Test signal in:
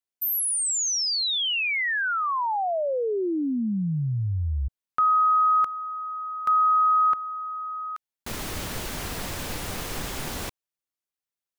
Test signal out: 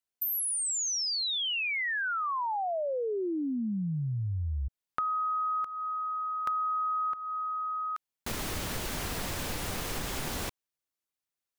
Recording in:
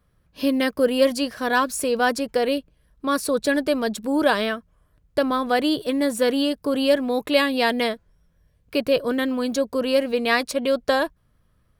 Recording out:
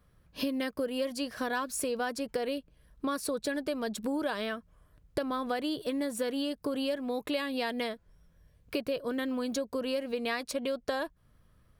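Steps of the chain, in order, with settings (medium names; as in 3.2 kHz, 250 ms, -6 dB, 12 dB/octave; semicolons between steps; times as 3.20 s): compression 6:1, threshold -30 dBFS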